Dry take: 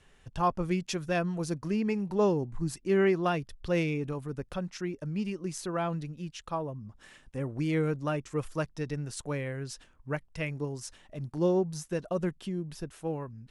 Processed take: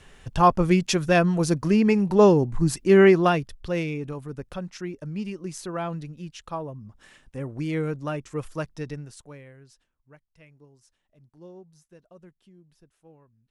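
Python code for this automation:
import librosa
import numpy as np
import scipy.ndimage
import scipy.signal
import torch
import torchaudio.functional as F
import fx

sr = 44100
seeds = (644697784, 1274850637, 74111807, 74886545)

y = fx.gain(x, sr, db=fx.line((3.16, 10.0), (3.74, 1.0), (8.89, 1.0), (9.25, -9.5), (10.11, -19.5)))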